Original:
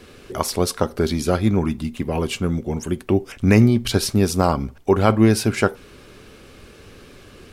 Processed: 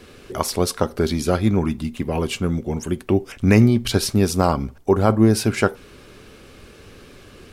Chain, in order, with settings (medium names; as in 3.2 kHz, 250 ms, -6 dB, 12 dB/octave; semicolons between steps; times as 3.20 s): 4.75–5.33 s: peaking EQ 2.7 kHz -5.5 dB -> -12.5 dB 1.3 oct